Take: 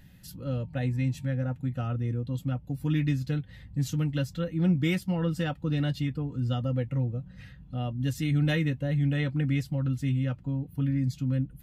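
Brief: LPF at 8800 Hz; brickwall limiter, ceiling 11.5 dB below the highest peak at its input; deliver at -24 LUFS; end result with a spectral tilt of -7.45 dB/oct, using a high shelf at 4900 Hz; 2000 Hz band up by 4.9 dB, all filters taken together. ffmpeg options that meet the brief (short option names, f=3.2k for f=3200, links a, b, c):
-af "lowpass=8.8k,equalizer=f=2k:t=o:g=7,highshelf=f=4.9k:g=-8,volume=9dB,alimiter=limit=-15dB:level=0:latency=1"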